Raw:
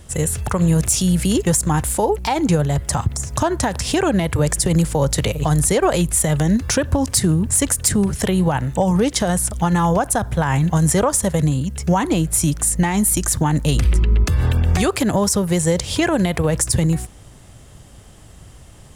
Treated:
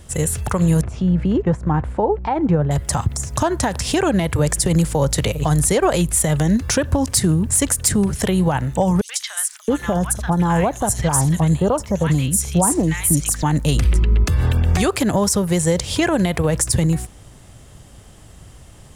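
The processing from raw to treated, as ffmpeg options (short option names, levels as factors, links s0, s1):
-filter_complex "[0:a]asettb=1/sr,asplit=3[s0][s1][s2];[s0]atrim=end=0.814[s3];[s1]atrim=start=0.81:end=2.71,asetpts=PTS-STARTPTS,afade=t=in:d=0.004:c=qsin,afade=t=out:st=1.896:d=0.004:c=qsin,lowpass=1400[s4];[s2]atrim=start=2.706[s5];[s3][s4]acrossfade=d=0.004:c1=hsin:c2=qsin[s6];[s6][s5]acrossfade=d=0.004:c1=qsin:c2=hsin,asettb=1/sr,asplit=3[s7][s8][s9];[s7]atrim=end=9.014[s10];[s8]atrim=start=9.01:end=13.43,asetpts=PTS-STARTPTS,afade=t=in:d=0.004:c=qsin,afade=t=out:st=4.416:d=0.004:c=qsin,acrossover=split=1300|4600[s11][s12][s13];[s12]adelay=80[s14];[s11]adelay=670[s15];[s15][s14][s13]amix=inputs=3:normalize=0,atrim=end_sample=194922[s16];[s9]atrim=start=13.426[s17];[s10][s16]acrossfade=d=0.004:c1=hsin:c2=qsin[s18];[s18][s17]acrossfade=d=0.004:c1=qsin:c2=hsin"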